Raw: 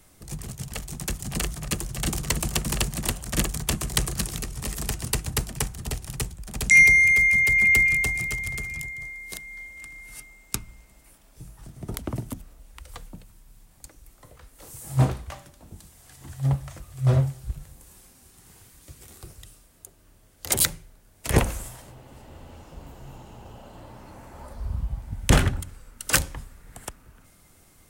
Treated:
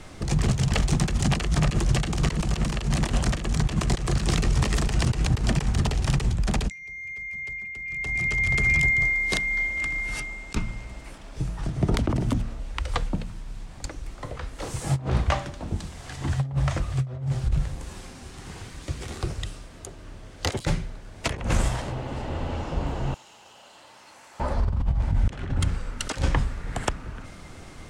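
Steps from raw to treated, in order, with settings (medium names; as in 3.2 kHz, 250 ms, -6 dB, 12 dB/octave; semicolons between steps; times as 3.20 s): de-hum 57.29 Hz, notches 4; 23.14–24.40 s: differentiator; compressor with a negative ratio -34 dBFS, ratio -1; distance through air 110 m; trim +9 dB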